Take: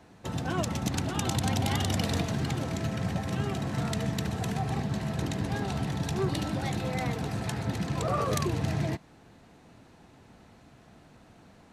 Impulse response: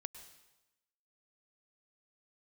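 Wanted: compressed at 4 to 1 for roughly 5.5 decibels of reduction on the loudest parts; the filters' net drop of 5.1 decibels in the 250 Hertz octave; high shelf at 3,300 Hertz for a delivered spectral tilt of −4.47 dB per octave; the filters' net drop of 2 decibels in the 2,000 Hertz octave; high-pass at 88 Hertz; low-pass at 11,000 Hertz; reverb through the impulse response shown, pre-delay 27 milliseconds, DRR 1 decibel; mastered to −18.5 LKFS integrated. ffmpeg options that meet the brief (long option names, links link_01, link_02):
-filter_complex "[0:a]highpass=88,lowpass=11000,equalizer=frequency=250:width_type=o:gain=-7.5,equalizer=frequency=2000:width_type=o:gain=-4,highshelf=frequency=3300:gain=5,acompressor=threshold=-32dB:ratio=4,asplit=2[link_01][link_02];[1:a]atrim=start_sample=2205,adelay=27[link_03];[link_02][link_03]afir=irnorm=-1:irlink=0,volume=2.5dB[link_04];[link_01][link_04]amix=inputs=2:normalize=0,volume=15dB"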